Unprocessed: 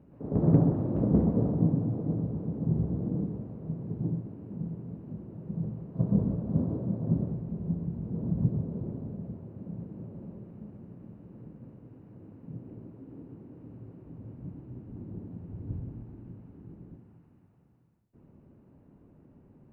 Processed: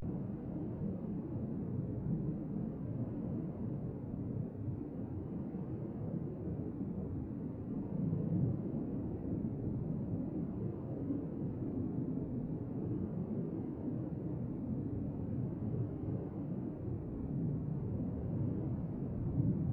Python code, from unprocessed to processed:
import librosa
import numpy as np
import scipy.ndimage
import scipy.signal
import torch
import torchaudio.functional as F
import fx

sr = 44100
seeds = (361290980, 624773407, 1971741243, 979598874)

y = fx.bin_compress(x, sr, power=0.6)
y = fx.paulstretch(y, sr, seeds[0], factor=5.8, window_s=0.05, from_s=11.11)
y = fx.vibrato(y, sr, rate_hz=0.39, depth_cents=95.0)
y = y * 10.0 ** (-4.5 / 20.0)